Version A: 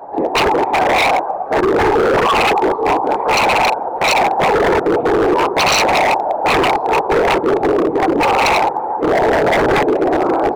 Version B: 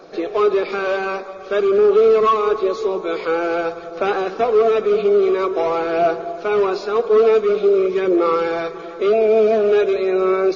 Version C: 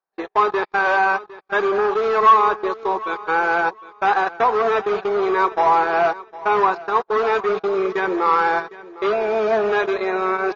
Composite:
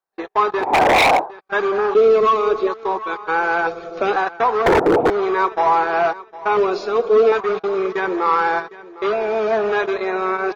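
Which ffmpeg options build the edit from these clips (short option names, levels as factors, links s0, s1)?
-filter_complex "[0:a]asplit=2[s0][s1];[1:a]asplit=3[s2][s3][s4];[2:a]asplit=6[s5][s6][s7][s8][s9][s10];[s5]atrim=end=0.73[s11];[s0]atrim=start=0.57:end=1.32[s12];[s6]atrim=start=1.16:end=1.952[s13];[s2]atrim=start=1.948:end=2.672[s14];[s7]atrim=start=2.668:end=3.672[s15];[s3]atrim=start=3.668:end=4.162[s16];[s8]atrim=start=4.158:end=4.662[s17];[s1]atrim=start=4.658:end=5.102[s18];[s9]atrim=start=5.098:end=6.572[s19];[s4]atrim=start=6.568:end=7.322[s20];[s10]atrim=start=7.318[s21];[s11][s12]acrossfade=d=0.16:c1=tri:c2=tri[s22];[s22][s13]acrossfade=d=0.16:c1=tri:c2=tri[s23];[s23][s14]acrossfade=d=0.004:c1=hsin:c2=hsin[s24];[s24][s15]acrossfade=d=0.004:c1=hsin:c2=hsin[s25];[s25][s16]acrossfade=d=0.004:c1=hsin:c2=hsin[s26];[s26][s17]acrossfade=d=0.004:c1=hsin:c2=hsin[s27];[s27][s18]acrossfade=d=0.004:c1=hsin:c2=hsin[s28];[s28][s19]acrossfade=d=0.004:c1=hsin:c2=hsin[s29];[s29][s20]acrossfade=d=0.004:c1=hsin:c2=hsin[s30];[s30][s21]acrossfade=d=0.004:c1=hsin:c2=hsin"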